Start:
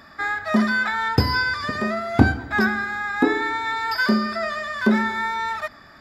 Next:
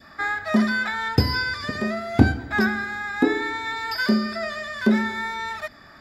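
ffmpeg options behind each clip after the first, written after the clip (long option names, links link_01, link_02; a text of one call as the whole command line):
ffmpeg -i in.wav -af "adynamicequalizer=threshold=0.0126:dfrequency=1100:dqfactor=1.3:tfrequency=1100:tqfactor=1.3:attack=5:release=100:ratio=0.375:range=3.5:mode=cutabove:tftype=bell" out.wav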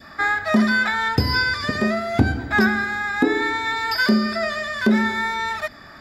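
ffmpeg -i in.wav -af "alimiter=limit=-11dB:level=0:latency=1:release=181,volume=5dB" out.wav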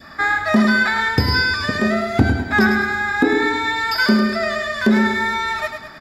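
ffmpeg -i in.wav -af "aecho=1:1:103|206|309|412|515:0.422|0.194|0.0892|0.041|0.0189,volume=2dB" out.wav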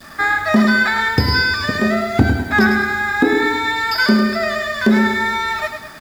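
ffmpeg -i in.wav -af "acrusher=bits=8:dc=4:mix=0:aa=0.000001,volume=1.5dB" out.wav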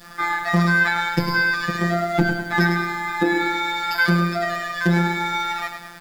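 ffmpeg -i in.wav -af "afftfilt=real='hypot(re,im)*cos(PI*b)':imag='0':win_size=1024:overlap=0.75" out.wav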